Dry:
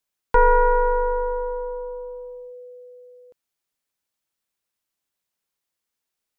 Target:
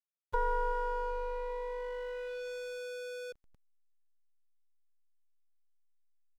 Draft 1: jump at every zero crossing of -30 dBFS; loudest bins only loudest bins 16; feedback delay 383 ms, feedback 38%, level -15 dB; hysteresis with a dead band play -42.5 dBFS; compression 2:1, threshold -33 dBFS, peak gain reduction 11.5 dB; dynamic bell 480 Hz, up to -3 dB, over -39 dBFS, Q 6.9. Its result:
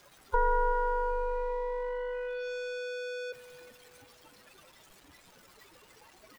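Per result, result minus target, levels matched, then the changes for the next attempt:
hysteresis with a dead band: distortion -8 dB; compression: peak gain reduction -4.5 dB
change: hysteresis with a dead band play -32.5 dBFS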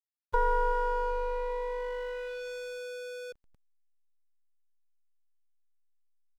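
compression: peak gain reduction -4.5 dB
change: compression 2:1, threshold -42.5 dBFS, peak gain reduction 16 dB

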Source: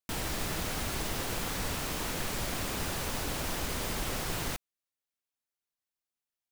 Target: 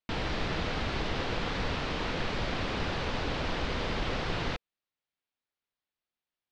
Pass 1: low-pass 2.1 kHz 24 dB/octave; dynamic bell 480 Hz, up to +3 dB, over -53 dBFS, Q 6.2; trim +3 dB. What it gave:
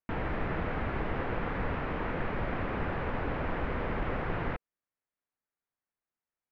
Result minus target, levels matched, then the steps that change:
4 kHz band -14.0 dB
change: low-pass 4.3 kHz 24 dB/octave

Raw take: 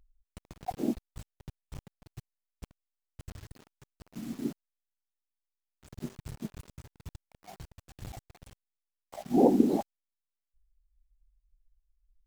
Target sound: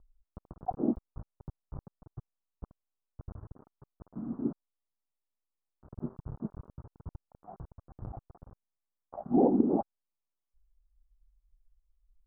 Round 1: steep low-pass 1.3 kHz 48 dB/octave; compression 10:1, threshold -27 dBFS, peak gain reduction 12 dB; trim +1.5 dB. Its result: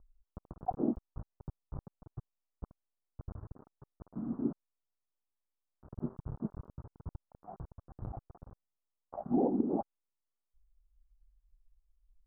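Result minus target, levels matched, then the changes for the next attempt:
compression: peak gain reduction +6 dB
change: compression 10:1, threshold -20.5 dBFS, peak gain reduction 6.5 dB

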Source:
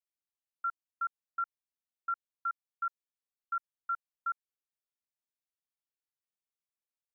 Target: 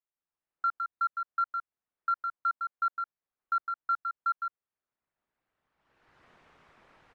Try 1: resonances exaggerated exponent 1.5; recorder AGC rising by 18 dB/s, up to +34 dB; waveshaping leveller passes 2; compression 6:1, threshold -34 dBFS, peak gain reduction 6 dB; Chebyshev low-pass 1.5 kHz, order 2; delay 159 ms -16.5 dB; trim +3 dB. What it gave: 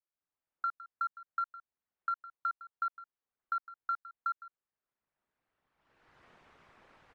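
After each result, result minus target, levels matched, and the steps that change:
echo-to-direct -11 dB; compression: peak gain reduction +6 dB
change: delay 159 ms -5.5 dB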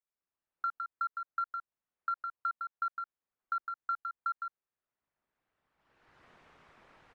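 compression: peak gain reduction +6 dB
remove: compression 6:1, threshold -34 dBFS, peak gain reduction 6 dB

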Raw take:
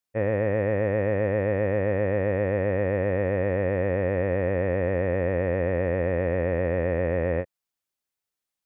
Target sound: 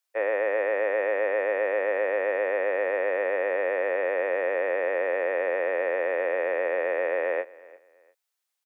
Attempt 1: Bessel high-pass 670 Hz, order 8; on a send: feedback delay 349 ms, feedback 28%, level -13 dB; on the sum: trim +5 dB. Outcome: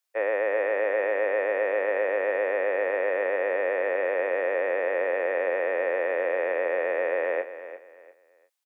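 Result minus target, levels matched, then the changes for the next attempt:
echo-to-direct +9 dB
change: feedback delay 349 ms, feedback 28%, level -22 dB

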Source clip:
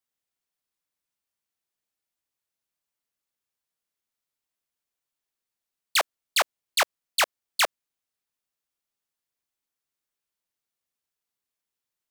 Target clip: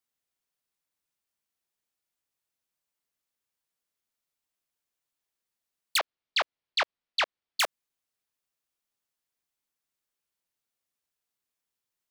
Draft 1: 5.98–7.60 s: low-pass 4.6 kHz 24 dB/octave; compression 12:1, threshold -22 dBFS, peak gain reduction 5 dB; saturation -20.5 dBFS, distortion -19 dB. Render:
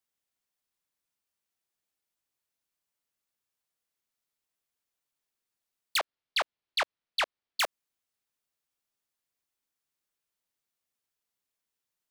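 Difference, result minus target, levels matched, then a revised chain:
saturation: distortion +19 dB
5.98–7.60 s: low-pass 4.6 kHz 24 dB/octave; compression 12:1, threshold -22 dBFS, peak gain reduction 5 dB; saturation -9.5 dBFS, distortion -38 dB

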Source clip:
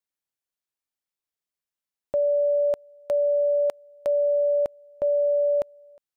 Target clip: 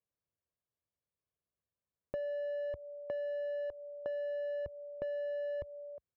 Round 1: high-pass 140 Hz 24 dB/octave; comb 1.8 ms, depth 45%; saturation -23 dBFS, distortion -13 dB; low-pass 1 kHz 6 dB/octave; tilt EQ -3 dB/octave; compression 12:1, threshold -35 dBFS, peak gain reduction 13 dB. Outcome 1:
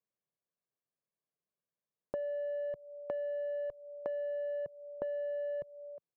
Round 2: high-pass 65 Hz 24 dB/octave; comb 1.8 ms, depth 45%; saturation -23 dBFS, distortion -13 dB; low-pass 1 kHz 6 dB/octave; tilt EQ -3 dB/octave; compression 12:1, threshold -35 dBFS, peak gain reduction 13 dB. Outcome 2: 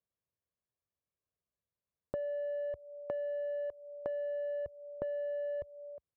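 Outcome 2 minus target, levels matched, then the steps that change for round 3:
saturation: distortion -4 dB
change: saturation -30 dBFS, distortion -9 dB

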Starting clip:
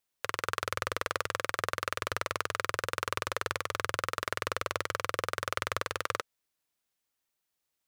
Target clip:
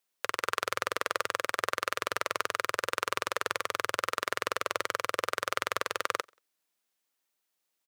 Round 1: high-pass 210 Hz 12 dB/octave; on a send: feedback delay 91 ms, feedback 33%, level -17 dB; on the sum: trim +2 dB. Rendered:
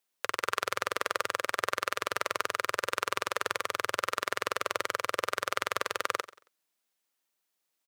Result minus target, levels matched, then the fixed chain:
echo-to-direct +11.5 dB
high-pass 210 Hz 12 dB/octave; on a send: feedback delay 91 ms, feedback 33%, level -28.5 dB; on the sum: trim +2 dB

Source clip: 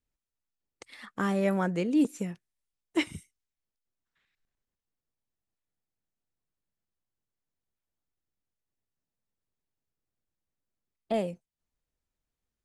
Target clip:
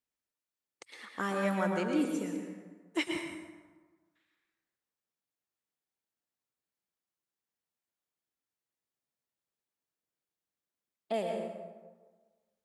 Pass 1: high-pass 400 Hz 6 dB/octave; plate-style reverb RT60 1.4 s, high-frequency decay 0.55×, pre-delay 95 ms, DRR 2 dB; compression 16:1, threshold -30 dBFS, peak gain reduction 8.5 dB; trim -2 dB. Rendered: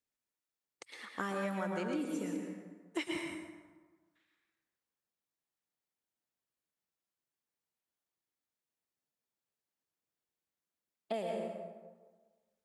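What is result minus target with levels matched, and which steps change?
compression: peak gain reduction +8.5 dB
remove: compression 16:1, threshold -30 dBFS, peak gain reduction 8.5 dB

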